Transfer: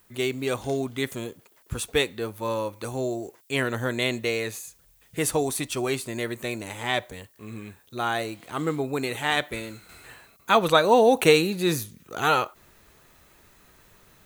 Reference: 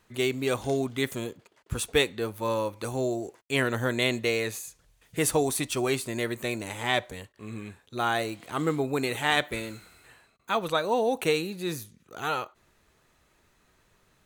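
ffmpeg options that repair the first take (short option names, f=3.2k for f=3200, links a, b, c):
-af "agate=range=-21dB:threshold=-49dB,asetnsamples=n=441:p=0,asendcmd='9.89 volume volume -8dB',volume=0dB"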